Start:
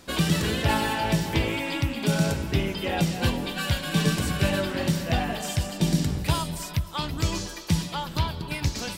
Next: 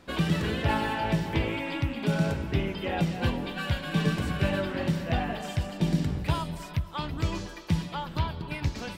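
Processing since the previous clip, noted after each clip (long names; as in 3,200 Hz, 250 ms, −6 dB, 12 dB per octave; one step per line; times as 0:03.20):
bass and treble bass 0 dB, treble −12 dB
level −2.5 dB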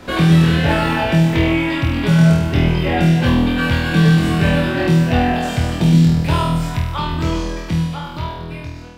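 fade-out on the ending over 2.76 s
flutter between parallel walls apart 4.2 metres, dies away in 0.77 s
multiband upward and downward compressor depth 40%
level +7 dB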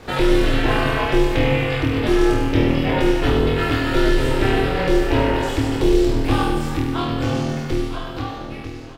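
ring modulation 190 Hz
single-tap delay 947 ms −15 dB
on a send at −9 dB: convolution reverb RT60 0.65 s, pre-delay 81 ms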